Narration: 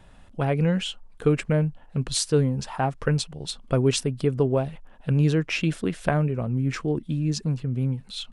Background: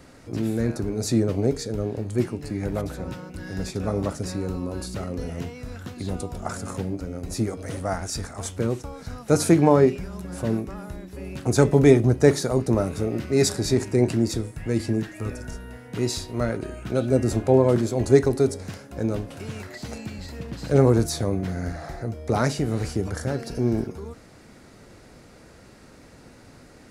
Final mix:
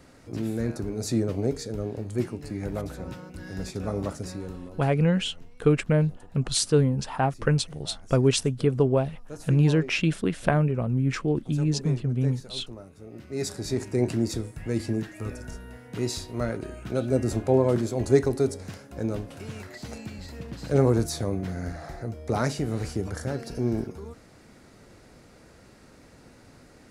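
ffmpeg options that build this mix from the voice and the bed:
ffmpeg -i stem1.wav -i stem2.wav -filter_complex "[0:a]adelay=4400,volume=0.5dB[link_01];[1:a]volume=13.5dB,afade=type=out:start_time=4.13:duration=0.79:silence=0.141254,afade=type=in:start_time=13:duration=1.14:silence=0.133352[link_02];[link_01][link_02]amix=inputs=2:normalize=0" out.wav

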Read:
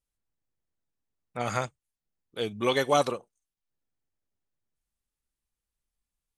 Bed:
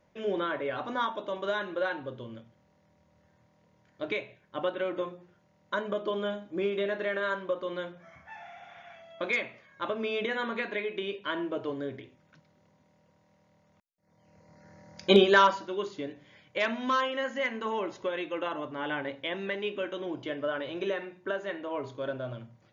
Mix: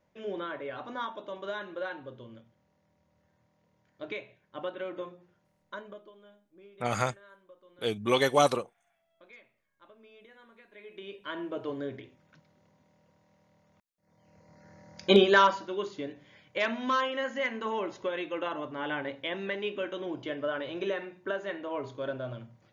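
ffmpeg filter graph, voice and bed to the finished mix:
ffmpeg -i stem1.wav -i stem2.wav -filter_complex "[0:a]adelay=5450,volume=0.5dB[link_01];[1:a]volume=18.5dB,afade=type=out:start_time=5.46:duration=0.66:silence=0.112202,afade=type=in:start_time=10.71:duration=1.08:silence=0.0630957[link_02];[link_01][link_02]amix=inputs=2:normalize=0" out.wav

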